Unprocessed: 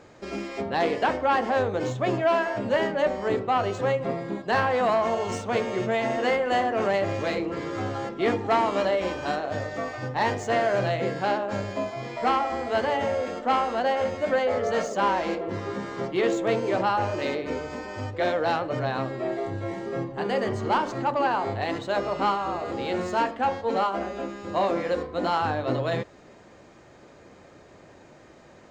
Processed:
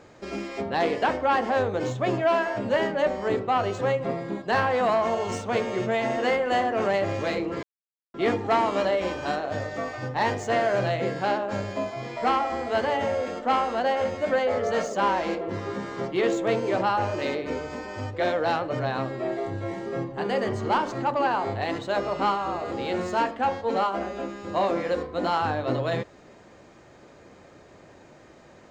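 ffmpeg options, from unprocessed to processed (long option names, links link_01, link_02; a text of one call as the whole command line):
ffmpeg -i in.wav -filter_complex "[0:a]asplit=3[link_01][link_02][link_03];[link_01]atrim=end=7.63,asetpts=PTS-STARTPTS,afade=type=out:start_time=7.626:duration=0.004:curve=hsin[link_04];[link_02]atrim=start=7.63:end=8.14,asetpts=PTS-STARTPTS,volume=0[link_05];[link_03]atrim=start=8.14,asetpts=PTS-STARTPTS,afade=type=in:duration=0.004:curve=hsin[link_06];[link_04][link_05][link_06]concat=n=3:v=0:a=1" out.wav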